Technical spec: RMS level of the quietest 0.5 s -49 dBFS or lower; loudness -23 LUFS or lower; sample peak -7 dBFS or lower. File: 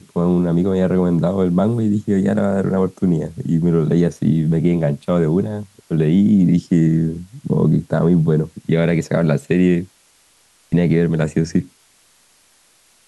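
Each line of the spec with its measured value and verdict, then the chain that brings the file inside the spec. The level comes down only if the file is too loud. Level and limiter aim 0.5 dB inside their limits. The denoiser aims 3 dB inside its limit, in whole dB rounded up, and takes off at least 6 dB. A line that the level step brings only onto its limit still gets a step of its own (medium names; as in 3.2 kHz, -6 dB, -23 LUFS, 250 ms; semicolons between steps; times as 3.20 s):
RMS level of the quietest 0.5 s -55 dBFS: pass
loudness -17.5 LUFS: fail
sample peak -5.0 dBFS: fail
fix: trim -6 dB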